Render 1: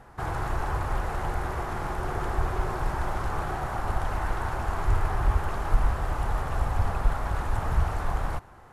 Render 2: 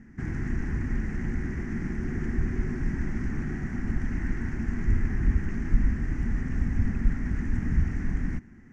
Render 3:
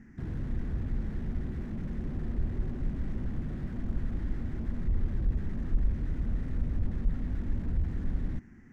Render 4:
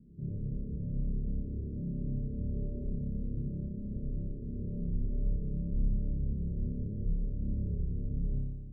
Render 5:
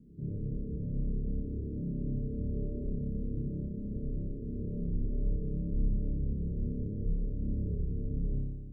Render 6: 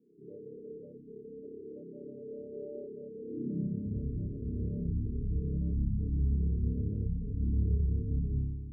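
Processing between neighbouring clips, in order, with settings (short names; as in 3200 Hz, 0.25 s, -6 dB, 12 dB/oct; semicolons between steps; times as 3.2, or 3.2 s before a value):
EQ curve 120 Hz 0 dB, 240 Hz +15 dB, 550 Hz -19 dB, 820 Hz -21 dB, 1200 Hz -19 dB, 1900 Hz +3 dB, 3800 Hz -21 dB, 6000 Hz -2 dB, 11000 Hz -26 dB
slew limiter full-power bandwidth 4.7 Hz; gain -2.5 dB
rippled Chebyshev low-pass 600 Hz, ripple 9 dB; on a send: flutter echo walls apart 5 m, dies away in 1.3 s; on the sum: gain -1.5 dB
small resonant body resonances 300/440 Hz, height 7 dB
spectral gate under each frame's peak -25 dB strong; high-pass sweep 510 Hz -> 66 Hz, 3.18–4.05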